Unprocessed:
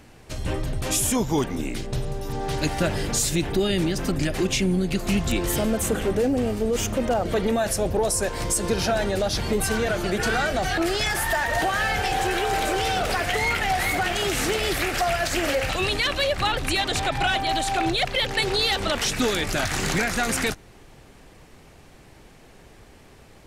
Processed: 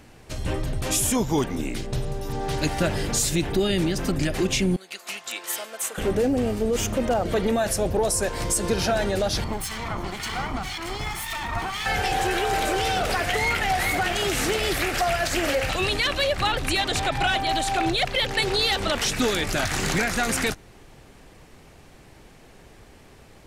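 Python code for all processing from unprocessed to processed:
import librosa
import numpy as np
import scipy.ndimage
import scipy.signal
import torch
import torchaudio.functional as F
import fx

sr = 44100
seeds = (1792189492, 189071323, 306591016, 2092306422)

y = fx.chain(x, sr, fx.highpass(hz=920.0, slope=12),
    fx.upward_expand(threshold_db=-41.0, expansion=1.5), at=(4.76, 5.98))
y = fx.chain(y, sr, fx.lower_of_two(delay_ms=0.94),
    fx.peak_eq(hz=14000.0, db=-4.0, octaves=1.6),
    fx.harmonic_tremolo(hz=1.9, depth_pct=70, crossover_hz=1700.0), at=(9.44, 11.86))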